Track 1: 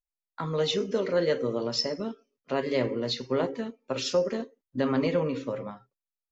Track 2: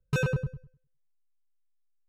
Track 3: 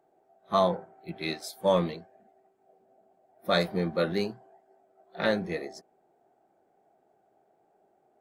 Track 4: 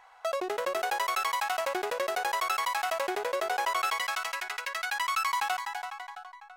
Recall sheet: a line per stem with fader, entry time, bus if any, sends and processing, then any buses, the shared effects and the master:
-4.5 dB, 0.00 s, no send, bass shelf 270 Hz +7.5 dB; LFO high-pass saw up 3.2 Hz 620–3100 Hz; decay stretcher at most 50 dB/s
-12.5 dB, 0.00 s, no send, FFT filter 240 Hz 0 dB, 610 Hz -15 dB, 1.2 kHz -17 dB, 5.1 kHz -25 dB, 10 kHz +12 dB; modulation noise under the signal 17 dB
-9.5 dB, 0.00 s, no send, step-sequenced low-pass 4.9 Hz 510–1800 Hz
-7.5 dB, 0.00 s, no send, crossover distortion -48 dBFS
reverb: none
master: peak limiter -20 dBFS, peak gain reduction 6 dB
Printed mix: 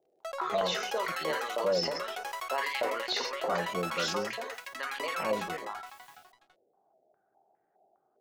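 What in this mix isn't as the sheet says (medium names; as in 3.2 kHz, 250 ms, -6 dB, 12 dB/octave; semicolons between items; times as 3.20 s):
stem 1: missing bass shelf 270 Hz +7.5 dB; stem 2: muted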